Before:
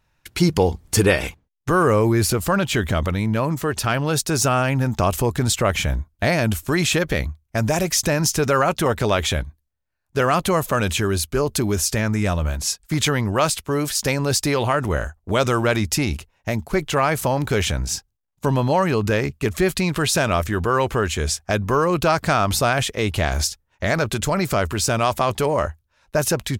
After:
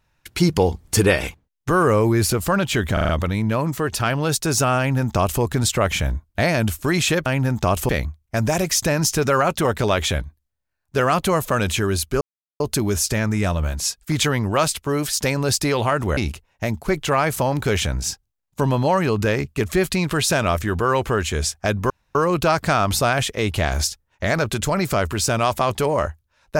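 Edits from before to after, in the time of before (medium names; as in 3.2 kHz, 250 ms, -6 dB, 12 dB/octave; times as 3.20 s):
2.93 s: stutter 0.04 s, 5 plays
4.62–5.25 s: copy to 7.10 s
11.42 s: insert silence 0.39 s
14.99–16.02 s: delete
21.75 s: insert room tone 0.25 s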